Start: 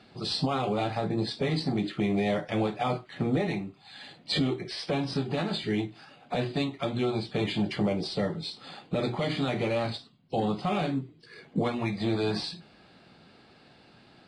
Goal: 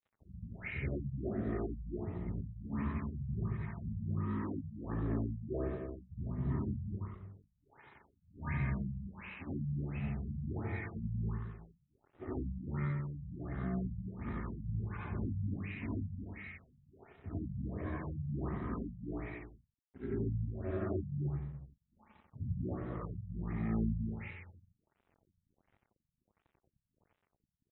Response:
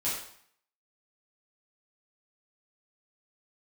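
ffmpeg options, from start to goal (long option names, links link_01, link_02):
-filter_complex "[0:a]afftfilt=real='re':imag='-im':win_size=4096:overlap=0.75,highshelf=frequency=3700:gain=-5.5,asoftclip=type=hard:threshold=-21.5dB,asetrate=22712,aresample=44100,equalizer=frequency=7400:width=2.1:gain=11,bandreject=frequency=60:width_type=h:width=6,bandreject=frequency=120:width_type=h:width=6,bandreject=frequency=180:width_type=h:width=6,bandreject=frequency=240:width_type=h:width=6,bandreject=frequency=300:width_type=h:width=6,bandreject=frequency=360:width_type=h:width=6,bandreject=frequency=420:width_type=h:width=6,bandreject=frequency=480:width_type=h:width=6,bandreject=frequency=540:width_type=h:width=6,asplit=2[link_01][link_02];[link_02]adelay=215.7,volume=-6dB,highshelf=frequency=4000:gain=-4.85[link_03];[link_01][link_03]amix=inputs=2:normalize=0,aeval=exprs='sgn(val(0))*max(abs(val(0))-0.00141,0)':channel_layout=same,afftfilt=real='re*lt(b*sr/1024,200*pow(4100/200,0.5+0.5*sin(2*PI*1.4*pts/sr)))':imag='im*lt(b*sr/1024,200*pow(4100/200,0.5+0.5*sin(2*PI*1.4*pts/sr)))':win_size=1024:overlap=0.75,volume=-3.5dB"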